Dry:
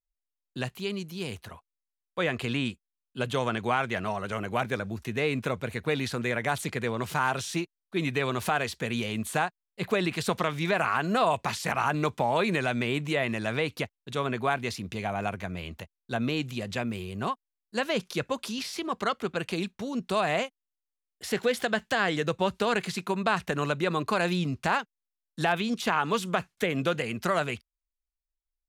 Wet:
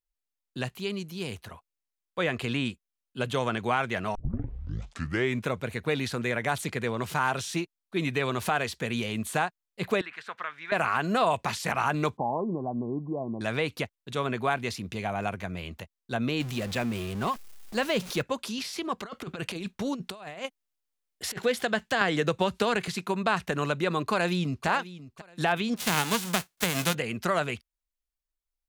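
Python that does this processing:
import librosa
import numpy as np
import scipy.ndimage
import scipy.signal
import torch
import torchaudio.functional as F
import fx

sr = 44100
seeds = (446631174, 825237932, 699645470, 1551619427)

y = fx.bandpass_q(x, sr, hz=1600.0, q=2.5, at=(10.01, 10.72))
y = fx.cheby_ripple(y, sr, hz=1100.0, ripple_db=6, at=(12.17, 13.41))
y = fx.zero_step(y, sr, step_db=-36.0, at=(16.4, 18.22))
y = fx.over_compress(y, sr, threshold_db=-33.0, ratio=-0.5, at=(18.98, 21.41), fade=0.02)
y = fx.band_squash(y, sr, depth_pct=100, at=(22.01, 22.88))
y = fx.echo_throw(y, sr, start_s=24.08, length_s=0.59, ms=540, feedback_pct=25, wet_db=-15.5)
y = fx.envelope_flatten(y, sr, power=0.3, at=(25.76, 26.93), fade=0.02)
y = fx.edit(y, sr, fx.tape_start(start_s=4.15, length_s=1.29), tone=tone)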